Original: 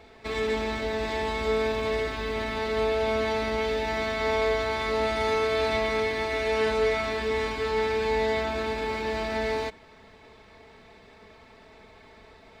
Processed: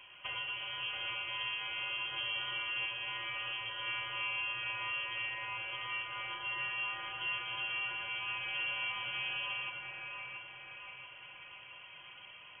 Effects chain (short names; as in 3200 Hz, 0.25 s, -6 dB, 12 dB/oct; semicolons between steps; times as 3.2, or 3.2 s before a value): compressor, threshold -34 dBFS, peak gain reduction 12.5 dB; on a send: split-band echo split 380 Hz, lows 0.116 s, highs 0.68 s, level -4 dB; on the sum: inverted band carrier 3200 Hz; gain -4 dB